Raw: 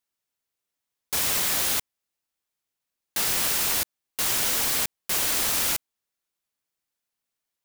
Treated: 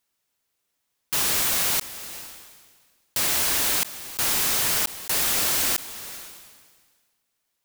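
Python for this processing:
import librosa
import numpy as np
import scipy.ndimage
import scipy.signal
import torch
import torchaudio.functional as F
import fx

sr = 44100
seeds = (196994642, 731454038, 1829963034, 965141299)

y = fx.low_shelf(x, sr, hz=390.0, db=10.5, at=(1.21, 1.64))
y = (np.mod(10.0 ** (26.0 / 20.0) * y + 1.0, 2.0) - 1.0) / 10.0 ** (26.0 / 20.0)
y = fx.sustainer(y, sr, db_per_s=36.0)
y = y * librosa.db_to_amplitude(8.0)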